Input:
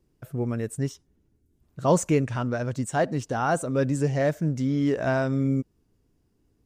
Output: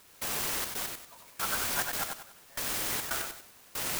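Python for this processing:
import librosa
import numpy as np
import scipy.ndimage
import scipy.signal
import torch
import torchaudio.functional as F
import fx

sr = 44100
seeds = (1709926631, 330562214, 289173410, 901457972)

y = scipy.signal.sosfilt(scipy.signal.butter(4, 1000.0, 'highpass', fs=sr, output='sos'), x)
y = fx.stretch_vocoder_free(y, sr, factor=0.6)
y = fx.quant_dither(y, sr, seeds[0], bits=6, dither='triangular')
y = fx.step_gate(y, sr, bpm=140, pattern='..xxxx.x...', floor_db=-24.0, edge_ms=4.5)
y = fx.echo_feedback(y, sr, ms=95, feedback_pct=33, wet_db=-5)
y = fx.clock_jitter(y, sr, seeds[1], jitter_ms=0.072)
y = y * librosa.db_to_amplitude(4.0)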